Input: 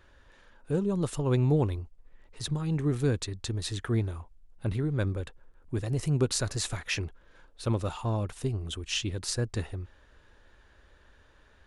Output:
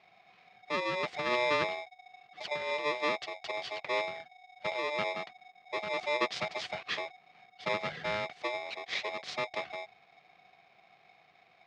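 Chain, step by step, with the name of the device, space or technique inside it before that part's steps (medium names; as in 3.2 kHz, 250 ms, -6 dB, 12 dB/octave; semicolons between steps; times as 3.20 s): ring modulator pedal into a guitar cabinet (polarity switched at an audio rate 740 Hz; cabinet simulation 110–4500 Hz, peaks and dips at 160 Hz +3 dB, 270 Hz -10 dB, 900 Hz -6 dB, 2.1 kHz +4 dB); trim -3.5 dB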